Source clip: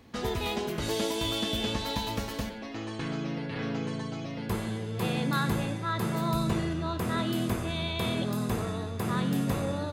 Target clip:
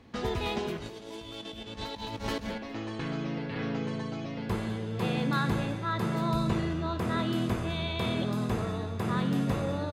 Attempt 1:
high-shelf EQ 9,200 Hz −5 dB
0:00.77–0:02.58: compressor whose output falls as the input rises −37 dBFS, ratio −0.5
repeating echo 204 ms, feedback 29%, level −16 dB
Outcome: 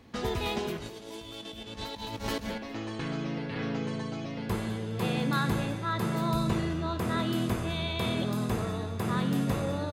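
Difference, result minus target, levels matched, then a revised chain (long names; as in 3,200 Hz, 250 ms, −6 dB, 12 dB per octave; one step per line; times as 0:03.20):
8,000 Hz band +4.0 dB
high-shelf EQ 9,200 Hz −16 dB
0:00.77–0:02.58: compressor whose output falls as the input rises −37 dBFS, ratio −0.5
repeating echo 204 ms, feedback 29%, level −16 dB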